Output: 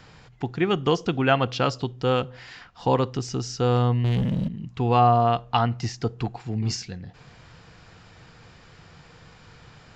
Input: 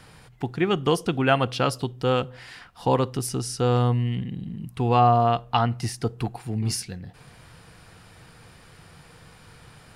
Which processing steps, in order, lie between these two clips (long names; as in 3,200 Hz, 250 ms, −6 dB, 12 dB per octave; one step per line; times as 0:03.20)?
downsampling to 16,000 Hz
0:04.04–0:04.48: leveller curve on the samples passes 3